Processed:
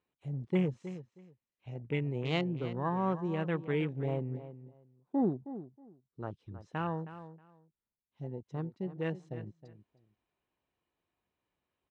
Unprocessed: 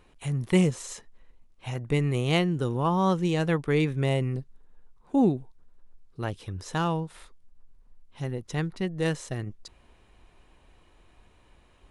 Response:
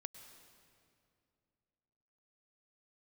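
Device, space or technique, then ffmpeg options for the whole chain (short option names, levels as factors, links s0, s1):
over-cleaned archive recording: -filter_complex "[0:a]highpass=110,lowpass=5500,afwtdn=0.02,lowpass=9100,asettb=1/sr,asplit=3[s0][s1][s2];[s0]atrim=end=0.764[s3];[s1]atrim=start=0.76:end=2.29,asetpts=PTS-STARTPTS,afade=t=in:d=0.004:c=qsin,afade=t=out:st=1.526:d=0.004:c=qsin,equalizer=f=2500:w=2.6:g=6[s4];[s2]atrim=start=2.286[s5];[s3][s4]acrossfade=d=0.004:c1=hsin:c2=qsin[s6];[s6][s5]acrossfade=d=0.004:c1=qsin:c2=hsin,asplit=2[s7][s8];[s8]adelay=317,lowpass=f=3700:p=1,volume=0.224,asplit=2[s9][s10];[s10]adelay=317,lowpass=f=3700:p=1,volume=0.19[s11];[s7][s9][s11]amix=inputs=3:normalize=0,volume=0.422"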